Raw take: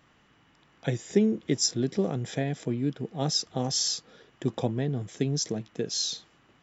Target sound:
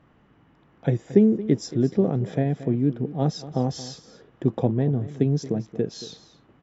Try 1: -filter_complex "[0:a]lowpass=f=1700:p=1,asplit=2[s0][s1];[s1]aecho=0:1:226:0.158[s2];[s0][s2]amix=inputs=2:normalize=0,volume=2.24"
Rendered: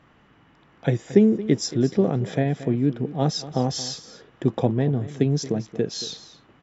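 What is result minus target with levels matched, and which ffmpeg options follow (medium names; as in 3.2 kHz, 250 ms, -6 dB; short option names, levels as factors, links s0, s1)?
2 kHz band +6.0 dB
-filter_complex "[0:a]lowpass=f=630:p=1,asplit=2[s0][s1];[s1]aecho=0:1:226:0.158[s2];[s0][s2]amix=inputs=2:normalize=0,volume=2.24"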